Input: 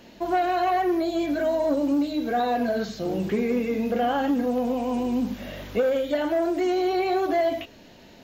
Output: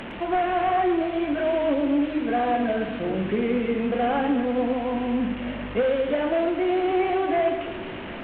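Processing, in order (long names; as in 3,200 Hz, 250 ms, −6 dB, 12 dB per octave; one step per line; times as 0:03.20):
linear delta modulator 16 kbit/s, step −29.5 dBFS
echo with a time of its own for lows and highs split 450 Hz, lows 325 ms, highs 112 ms, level −10 dB
AAC 96 kbit/s 32,000 Hz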